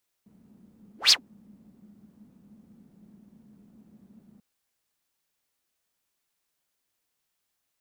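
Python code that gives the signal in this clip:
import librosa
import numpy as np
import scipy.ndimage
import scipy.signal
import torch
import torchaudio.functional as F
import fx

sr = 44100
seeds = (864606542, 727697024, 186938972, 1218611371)

y = fx.whoosh(sr, seeds[0], length_s=4.14, peak_s=0.85, rise_s=0.15, fall_s=0.1, ends_hz=210.0, peak_hz=5000.0, q=8.9, swell_db=40.0)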